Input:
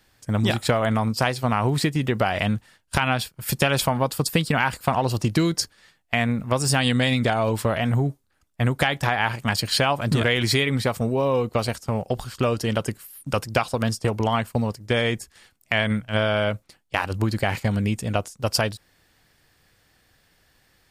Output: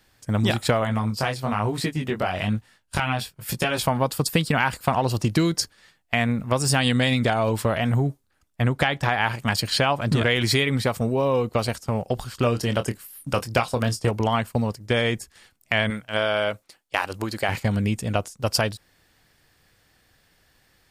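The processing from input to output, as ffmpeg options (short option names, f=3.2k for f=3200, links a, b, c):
-filter_complex "[0:a]asplit=3[a][b][c];[a]afade=t=out:st=0.83:d=0.02[d];[b]flanger=delay=17:depth=5.6:speed=1.1,afade=t=in:st=0.83:d=0.02,afade=t=out:st=3.85:d=0.02[e];[c]afade=t=in:st=3.85:d=0.02[f];[d][e][f]amix=inputs=3:normalize=0,asettb=1/sr,asplit=3[g][h][i];[g]atrim=end=8.624[j];[h]atrim=start=8.62:end=9.09,asetpts=PTS-STARTPTS,afade=t=in:d=0.004:c=qsin,afade=t=out:st=0.466:d=0.004:c=qsin,highshelf=f=8k:g=-10.5[k];[i]atrim=start=9.086[l];[j][k]acrossfade=d=0.004:c1=hsin:c2=qsin[m];[m][l]acrossfade=d=0.004:c1=qsin:c2=hsin,asettb=1/sr,asplit=3[n][o][p];[n]atrim=end=9.704[q];[o]atrim=start=9.7:end=10.29,asetpts=PTS-STARTPTS,afade=t=in:d=0.004:c=qsin,afade=t=out:st=0.586:d=0.004:c=qsin,highshelf=f=9k:g=-7.5[r];[p]atrim=start=10.286[s];[q][r]acrossfade=d=0.004:c1=hsin:c2=qsin[t];[t][s]acrossfade=d=0.004:c1=qsin:c2=hsin,asettb=1/sr,asplit=3[u][v][w];[u]atrim=end=12.364[x];[v]atrim=start=12.36:end=14.11,asetpts=PTS-STARTPTS,afade=t=in:d=0.004:c=qsin,afade=t=out:st=1.746:d=0.004:c=qsin,asplit=2[y][z];[z]adelay=25,volume=-10dB[aa];[y][aa]amix=inputs=2:normalize=0,atrim=end_sample=77175[ab];[w]atrim=start=14.106[ac];[x][ab]acrossfade=d=0.004:c1=hsin:c2=qsin[ad];[ad][ac]acrossfade=d=0.004:c1=qsin:c2=hsin,asettb=1/sr,asplit=3[ae][af][ag];[ae]atrim=end=15.904[ah];[af]atrim=start=15.9:end=17.49,asetpts=PTS-STARTPTS,afade=t=in:d=0.004:c=qsin,afade=t=out:st=1.586:d=0.004:c=qsin,bass=f=250:g=-11,treble=f=4k:g=2[ai];[ag]atrim=start=17.486[aj];[ah][ai]acrossfade=d=0.004:c1=hsin:c2=qsin[ak];[ak][aj]acrossfade=d=0.004:c1=qsin:c2=hsin"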